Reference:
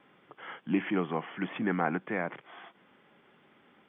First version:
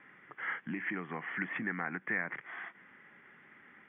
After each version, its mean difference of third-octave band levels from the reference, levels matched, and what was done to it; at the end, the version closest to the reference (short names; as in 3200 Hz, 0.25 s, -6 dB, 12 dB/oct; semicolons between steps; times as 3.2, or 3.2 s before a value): 3.5 dB: bell 590 Hz -5.5 dB 1.5 oct; compressor 6:1, threshold -37 dBFS, peak gain reduction 12.5 dB; synth low-pass 1900 Hz, resonance Q 4.6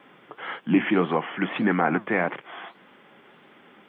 1.0 dB: HPF 150 Hz 6 dB/oct; in parallel at +1 dB: limiter -22.5 dBFS, peak gain reduction 7.5 dB; on the sum: flange 1.7 Hz, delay 1.6 ms, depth 8.8 ms, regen +76%; gain +7.5 dB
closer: second